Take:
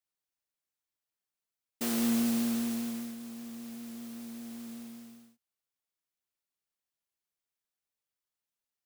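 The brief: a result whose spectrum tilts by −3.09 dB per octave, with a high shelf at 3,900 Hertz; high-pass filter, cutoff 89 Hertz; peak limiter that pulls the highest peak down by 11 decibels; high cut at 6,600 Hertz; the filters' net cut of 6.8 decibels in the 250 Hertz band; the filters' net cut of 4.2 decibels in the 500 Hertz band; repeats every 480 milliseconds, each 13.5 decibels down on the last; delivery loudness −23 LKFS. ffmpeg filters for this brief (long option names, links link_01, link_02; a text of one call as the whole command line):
ffmpeg -i in.wav -af "highpass=89,lowpass=6600,equalizer=frequency=250:width_type=o:gain=-6.5,equalizer=frequency=500:width_type=o:gain=-3.5,highshelf=frequency=3900:gain=8.5,alimiter=level_in=9.5dB:limit=-24dB:level=0:latency=1,volume=-9.5dB,aecho=1:1:480|960:0.211|0.0444,volume=21dB" out.wav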